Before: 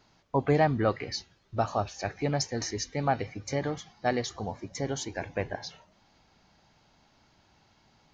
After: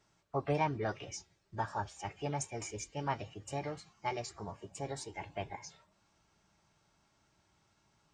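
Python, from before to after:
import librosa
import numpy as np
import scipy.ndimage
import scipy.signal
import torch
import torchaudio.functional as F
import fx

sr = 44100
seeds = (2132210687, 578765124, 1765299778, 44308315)

y = fx.formant_shift(x, sr, semitones=4)
y = fx.notch_comb(y, sr, f0_hz=250.0)
y = F.gain(torch.from_numpy(y), -7.5).numpy()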